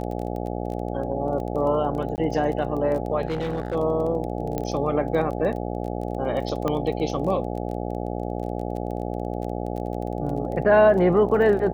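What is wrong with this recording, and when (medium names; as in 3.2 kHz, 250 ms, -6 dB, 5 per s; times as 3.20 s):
buzz 60 Hz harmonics 14 -29 dBFS
crackle 19 per s -31 dBFS
2.16–2.18 s: dropout 19 ms
3.27–3.76 s: clipped -22 dBFS
4.58 s: pop -14 dBFS
6.68 s: pop -13 dBFS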